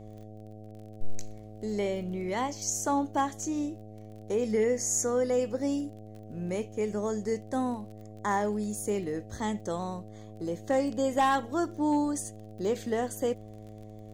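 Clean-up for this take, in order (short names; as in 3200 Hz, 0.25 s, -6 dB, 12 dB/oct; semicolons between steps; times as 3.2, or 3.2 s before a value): clip repair -18.5 dBFS; de-click; de-hum 106.9 Hz, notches 7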